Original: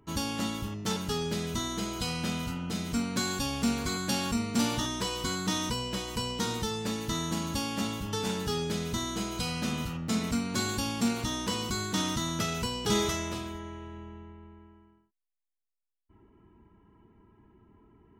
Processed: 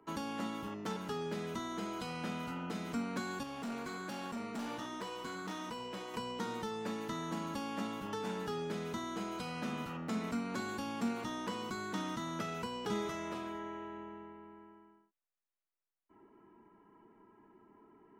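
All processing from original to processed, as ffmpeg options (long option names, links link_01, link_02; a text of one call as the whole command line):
ffmpeg -i in.wav -filter_complex "[0:a]asettb=1/sr,asplit=3[link_01][link_02][link_03];[link_01]atrim=end=3.434[link_04];[link_02]atrim=start=3.43:end=6.14,asetpts=PTS-STARTPTS,afade=type=in:duration=0.004:curve=qsin,afade=type=out:start_time=2.706:duration=0.004:curve=qsin,flanger=delay=3.9:depth=4.8:regen=-79:speed=1.3:shape=triangular,asoftclip=type=hard:threshold=-32dB[link_05];[link_03]atrim=start=6.136[link_06];[link_04][link_05]acrossfade=duration=0.004:curve1=hsin:curve2=qsin[link_07];[link_07][link_06]acrossfade=duration=0.004:curve1=qsin:curve2=hsin,equalizer=frequency=67:width=0.37:gain=-13,acrossover=split=210[link_08][link_09];[link_09]acompressor=threshold=-42dB:ratio=2.5[link_10];[link_08][link_10]amix=inputs=2:normalize=0,acrossover=split=160 2200:gain=0.224 1 0.224[link_11][link_12][link_13];[link_11][link_12][link_13]amix=inputs=3:normalize=0,volume=3.5dB" out.wav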